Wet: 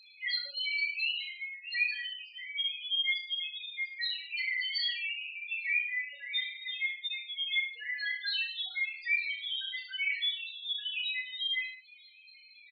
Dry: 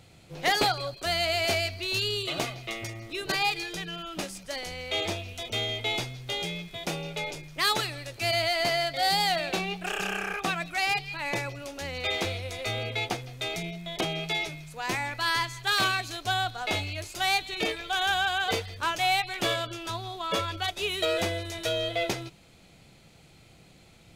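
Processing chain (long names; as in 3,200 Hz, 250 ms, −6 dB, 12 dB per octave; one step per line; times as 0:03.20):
reverb reduction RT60 0.86 s
high-pass filter 780 Hz 12 dB per octave
flat-topped bell 2,900 Hz +16 dB
wrap-around overflow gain 2 dB
upward compression, threshold −21 dBFS
tempo change 1.9×
spectral peaks only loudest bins 1
on a send: reverse bouncing-ball delay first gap 30 ms, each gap 1.15×, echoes 5
on the sum: level −7 dB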